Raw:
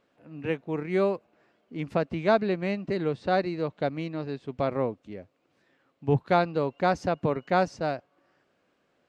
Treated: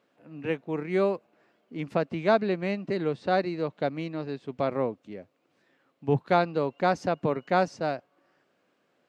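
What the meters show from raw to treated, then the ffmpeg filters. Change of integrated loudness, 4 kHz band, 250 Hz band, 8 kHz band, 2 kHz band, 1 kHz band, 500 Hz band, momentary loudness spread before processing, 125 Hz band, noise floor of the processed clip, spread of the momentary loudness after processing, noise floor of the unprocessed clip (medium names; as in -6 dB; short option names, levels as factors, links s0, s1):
0.0 dB, 0.0 dB, -0.5 dB, no reading, 0.0 dB, 0.0 dB, 0.0 dB, 13 LU, -2.0 dB, -71 dBFS, 13 LU, -71 dBFS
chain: -af "highpass=130"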